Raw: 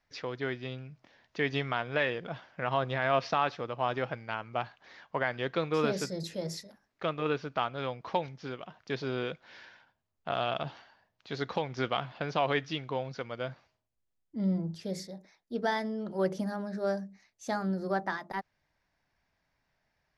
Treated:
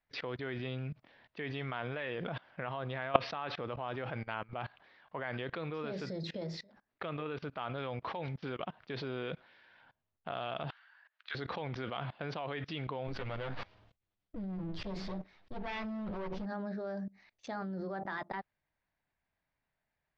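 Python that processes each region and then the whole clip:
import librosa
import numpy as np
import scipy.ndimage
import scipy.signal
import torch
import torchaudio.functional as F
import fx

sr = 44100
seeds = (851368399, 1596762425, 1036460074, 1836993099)

y = fx.chain(x, sr, fx.highpass_res(hz=1500.0, q=2.6),
    fx.doubler(ms=19.0, db=-12.5), at=(10.7, 11.35))
y = fx.chain(y, sr, fx.lower_of_two(delay_ms=10.0),
    fx.low_shelf(hz=75.0, db=8.0),
    fx.sustainer(db_per_s=84.0), at=(13.07, 16.46))
y = fx.level_steps(y, sr, step_db=24)
y = scipy.signal.sosfilt(scipy.signal.butter(4, 4000.0, 'lowpass', fs=sr, output='sos'), y)
y = y * librosa.db_to_amplitude(9.5)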